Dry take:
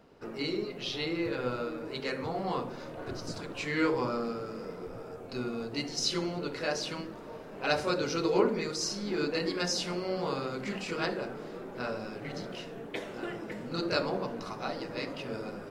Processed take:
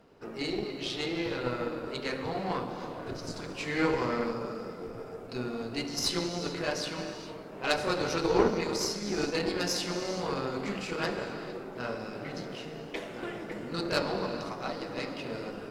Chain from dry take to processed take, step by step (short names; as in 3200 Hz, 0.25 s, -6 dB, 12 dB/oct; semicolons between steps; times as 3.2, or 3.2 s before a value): non-linear reverb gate 0.48 s flat, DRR 6.5 dB; added harmonics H 3 -20 dB, 4 -20 dB, 8 -32 dB, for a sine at -11.5 dBFS; gain +2.5 dB